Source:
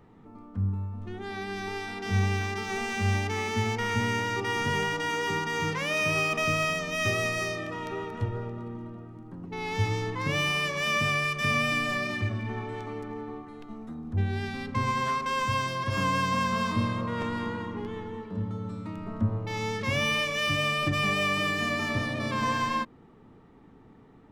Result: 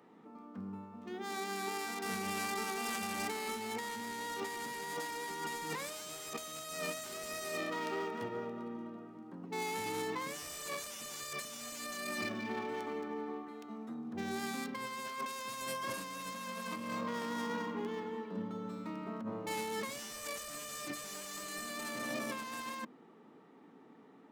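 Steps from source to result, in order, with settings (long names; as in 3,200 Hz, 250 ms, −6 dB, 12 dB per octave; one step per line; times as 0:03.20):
stylus tracing distortion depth 0.43 ms
high-pass filter 200 Hz 24 dB per octave
high-shelf EQ 6,300 Hz +4.5 dB
mains-hum notches 50/100/150/200/250/300/350/400 Hz
compressor whose output falls as the input rises −34 dBFS, ratio −1
linearly interpolated sample-rate reduction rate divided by 2×
level −6 dB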